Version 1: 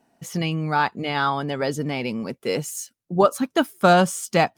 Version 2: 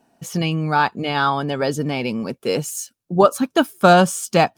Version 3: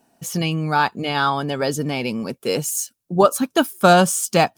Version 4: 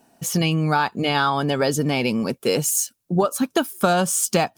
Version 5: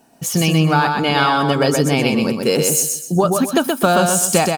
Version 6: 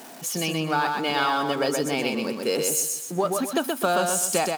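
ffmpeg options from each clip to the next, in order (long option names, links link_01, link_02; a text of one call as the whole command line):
ffmpeg -i in.wav -af "bandreject=frequency=2000:width=8.4,volume=3.5dB" out.wav
ffmpeg -i in.wav -af "highshelf=frequency=6000:gain=8.5,volume=-1dB" out.wav
ffmpeg -i in.wav -af "acompressor=threshold=-19dB:ratio=10,volume=3.5dB" out.wav
ffmpeg -i in.wav -af "aecho=1:1:126|252|378|504:0.631|0.202|0.0646|0.0207,volume=3.5dB" out.wav
ffmpeg -i in.wav -af "aeval=exprs='val(0)+0.5*0.0355*sgn(val(0))':channel_layout=same,highpass=260,volume=-8dB" out.wav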